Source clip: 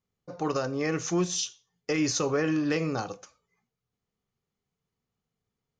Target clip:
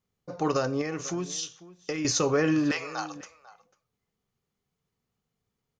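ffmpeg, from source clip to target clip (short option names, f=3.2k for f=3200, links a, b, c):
-filter_complex "[0:a]asettb=1/sr,asplit=3[a][b][c];[a]atrim=end=0.814[d];[b]atrim=start=0.81:end=2.05,asetpts=PTS-STARTPTS,afade=t=in:d=0.004:c=qsin,afade=t=out:st=1.236:d=0.004:c=qsin,acompressor=threshold=-34dB:ratio=3[e];[c]atrim=start=2.046[f];[d][e]acrossfade=d=0.004:c1=hsin:c2=qsin[g];[g][f]acrossfade=d=0.004:c1=qsin:c2=hsin,asettb=1/sr,asplit=3[h][i][j];[h]atrim=end=2.714[k];[i]atrim=start=2.71:end=3.16,asetpts=PTS-STARTPTS,afade=t=in:d=0.004:c=qsin,afade=t=out:st=0.446:d=0.004:c=qsin,highpass=f=740:w=0.5412,highpass=f=740:w=1.3066[l];[j]atrim=start=3.156[m];[k][l]acrossfade=d=0.004:c1=hsin:c2=qsin[n];[n][m]acrossfade=d=0.004:c1=qsin:c2=hsin,asplit=2[o][p];[p]adelay=495.6,volume=-18dB,highshelf=f=4k:g=-11.2[q];[o][q]amix=inputs=2:normalize=0,volume=2.5dB"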